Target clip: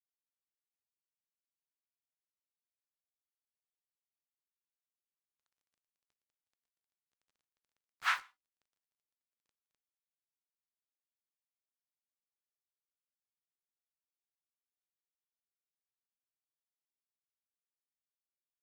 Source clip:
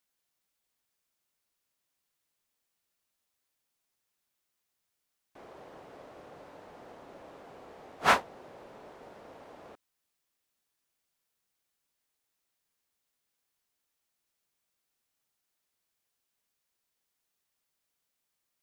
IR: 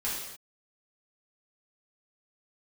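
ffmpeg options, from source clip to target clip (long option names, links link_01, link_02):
-filter_complex "[0:a]highpass=frequency=1300:width=0.5412,highpass=frequency=1300:width=1.3066,highshelf=frequency=5800:gain=-10,acrusher=bits=7:mix=0:aa=0.5,acompressor=threshold=-26dB:ratio=6,asplit=2[link_01][link_02];[1:a]atrim=start_sample=2205,asetrate=79380,aresample=44100[link_03];[link_02][link_03]afir=irnorm=-1:irlink=0,volume=-17.5dB[link_04];[link_01][link_04]amix=inputs=2:normalize=0,volume=-1dB"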